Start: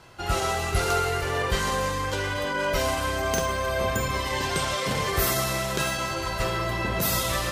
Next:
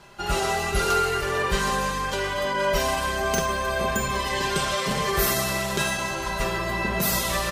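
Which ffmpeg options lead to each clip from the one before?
ffmpeg -i in.wav -af "aecho=1:1:5:0.62" out.wav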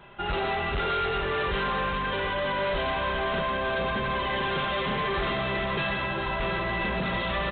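ffmpeg -i in.wav -af "aecho=1:1:406|720:0.299|0.251,aresample=8000,asoftclip=type=hard:threshold=-25dB,aresample=44100" out.wav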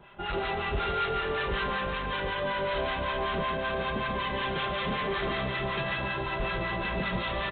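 ffmpeg -i in.wav -filter_complex "[0:a]acrossover=split=850[link_01][link_02];[link_01]aeval=exprs='val(0)*(1-0.7/2+0.7/2*cos(2*PI*5.3*n/s))':channel_layout=same[link_03];[link_02]aeval=exprs='val(0)*(1-0.7/2-0.7/2*cos(2*PI*5.3*n/s))':channel_layout=same[link_04];[link_03][link_04]amix=inputs=2:normalize=0,aecho=1:1:145:0.447" out.wav

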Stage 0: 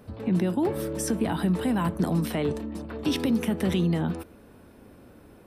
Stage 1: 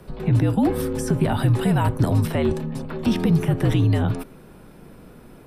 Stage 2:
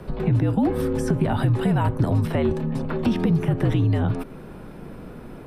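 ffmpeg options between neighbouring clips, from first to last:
ffmpeg -i in.wav -filter_complex "[0:a]acrossover=split=640|1800[link_01][link_02][link_03];[link_03]alimiter=level_in=7.5dB:limit=-24dB:level=0:latency=1:release=182,volume=-7.5dB[link_04];[link_01][link_02][link_04]amix=inputs=3:normalize=0,afreqshift=-63,volume=6dB" out.wav
ffmpeg -i in.wav -af "highshelf=frequency=4200:gain=-10.5,acompressor=threshold=-30dB:ratio=2,volume=6.5dB" out.wav

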